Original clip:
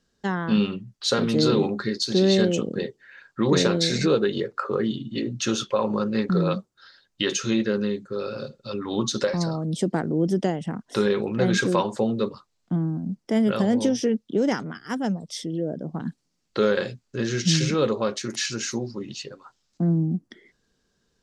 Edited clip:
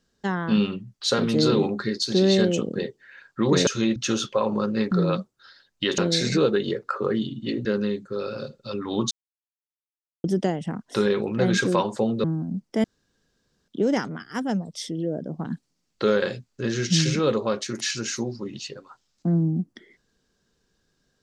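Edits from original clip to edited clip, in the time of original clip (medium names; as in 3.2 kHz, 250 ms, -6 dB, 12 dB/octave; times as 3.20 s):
3.67–5.34 s: swap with 7.36–7.65 s
9.11–10.24 s: mute
12.24–12.79 s: delete
13.39–14.23 s: room tone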